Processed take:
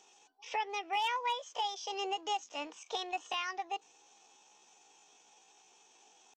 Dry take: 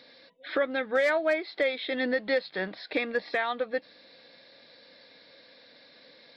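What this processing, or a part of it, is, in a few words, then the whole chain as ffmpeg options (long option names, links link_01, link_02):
chipmunk voice: -af "asetrate=68011,aresample=44100,atempo=0.64842,volume=-8dB"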